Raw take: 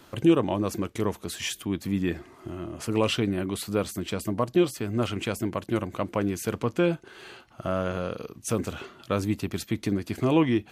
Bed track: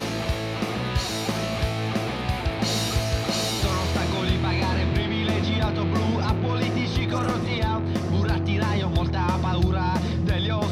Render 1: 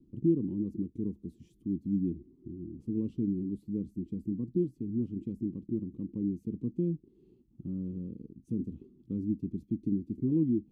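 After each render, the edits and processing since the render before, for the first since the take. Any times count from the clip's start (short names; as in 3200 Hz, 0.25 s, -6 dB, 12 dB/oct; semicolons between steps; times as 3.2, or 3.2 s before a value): inverse Chebyshev low-pass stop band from 590 Hz, stop band 40 dB; bell 100 Hz -10.5 dB 0.81 oct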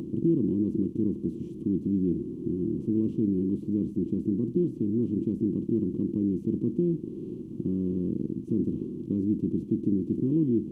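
per-bin compression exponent 0.4; upward compressor, threshold -35 dBFS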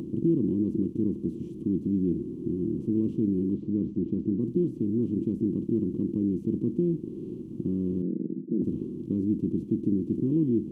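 3.53–4.4 air absorption 120 m; 8.02–8.62 elliptic band-pass 160–560 Hz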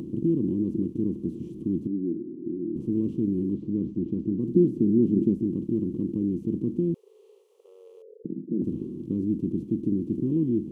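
1.87–2.76 band-pass 320 Hz, Q 1.8; 4.49–5.34 small resonant body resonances 210/370 Hz, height 7 dB, ringing for 25 ms; 6.94–8.25 brick-wall FIR high-pass 400 Hz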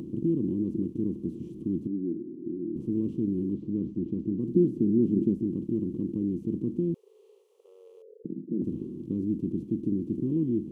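gain -2.5 dB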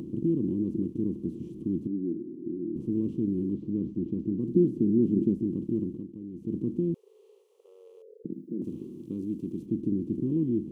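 5.82–6.57 dip -11.5 dB, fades 0.25 s; 8.33–9.66 tilt +2 dB/oct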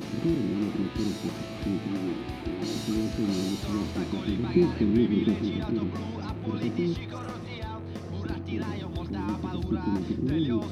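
add bed track -12 dB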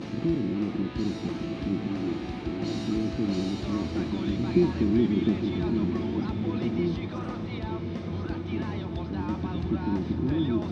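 air absorption 99 m; on a send: diffused feedback echo 1.087 s, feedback 43%, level -7 dB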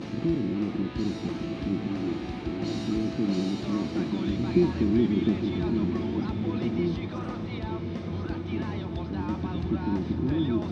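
3.07–4.27 resonant low shelf 110 Hz -7 dB, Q 1.5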